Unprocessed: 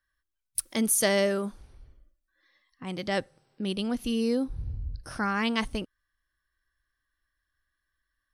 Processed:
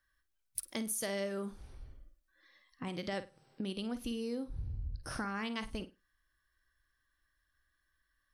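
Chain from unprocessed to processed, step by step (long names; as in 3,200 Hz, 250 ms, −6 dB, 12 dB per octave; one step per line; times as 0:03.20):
downward compressor 4 to 1, threshold −39 dBFS, peak gain reduction 16 dB
on a send: flutter between parallel walls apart 8.7 metres, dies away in 0.24 s
on the sum: level +1.5 dB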